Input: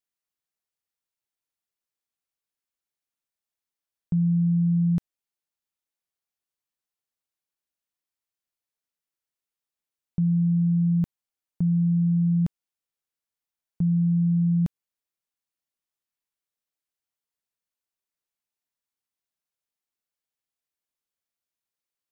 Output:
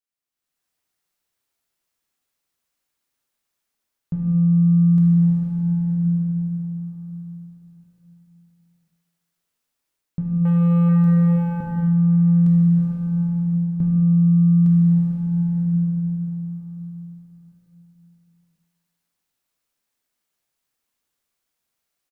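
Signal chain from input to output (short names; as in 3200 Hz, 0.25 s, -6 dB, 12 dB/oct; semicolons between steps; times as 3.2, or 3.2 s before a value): in parallel at -11.5 dB: soft clip -33.5 dBFS, distortion -9 dB; 10.45–10.89 on the sum: sample leveller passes 3; plate-style reverb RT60 4.7 s, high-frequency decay 0.7×, DRR -4.5 dB; AGC gain up to 11 dB; limiter -6.5 dBFS, peak gain reduction 5.5 dB; on a send: feedback echo 0.152 s, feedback 58%, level -15.5 dB; on the sum: gain -7 dB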